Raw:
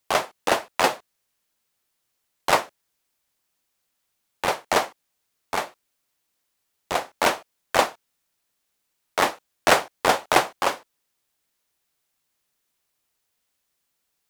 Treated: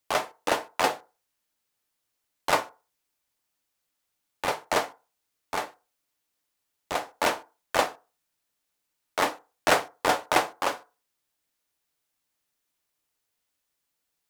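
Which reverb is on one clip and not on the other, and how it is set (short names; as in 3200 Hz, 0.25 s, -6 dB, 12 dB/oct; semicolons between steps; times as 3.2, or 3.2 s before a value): FDN reverb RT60 0.32 s, low-frequency decay 0.8×, high-frequency decay 0.45×, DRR 10 dB; gain -4.5 dB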